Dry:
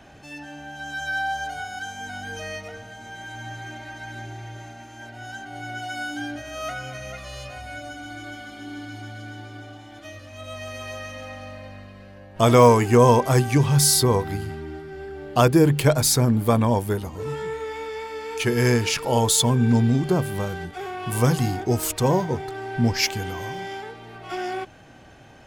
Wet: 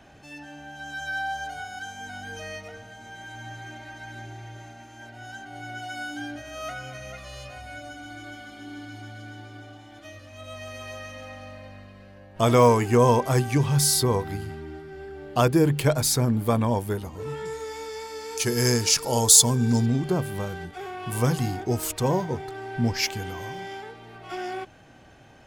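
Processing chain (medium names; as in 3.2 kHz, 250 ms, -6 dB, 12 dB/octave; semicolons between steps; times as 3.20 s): 17.45–19.86 s: resonant high shelf 3.9 kHz +9 dB, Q 1.5; trim -3.5 dB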